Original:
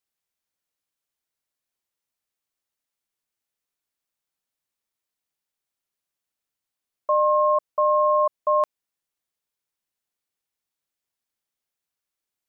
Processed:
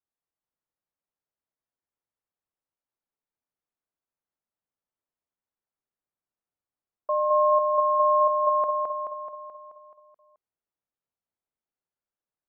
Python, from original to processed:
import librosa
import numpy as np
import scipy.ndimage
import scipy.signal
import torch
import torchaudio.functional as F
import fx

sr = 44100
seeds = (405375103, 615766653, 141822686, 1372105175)

y = scipy.signal.sosfilt(scipy.signal.butter(2, 1300.0, 'lowpass', fs=sr, output='sos'), x)
y = fx.echo_feedback(y, sr, ms=215, feedback_pct=58, wet_db=-3.5)
y = y * librosa.db_to_amplitude(-4.0)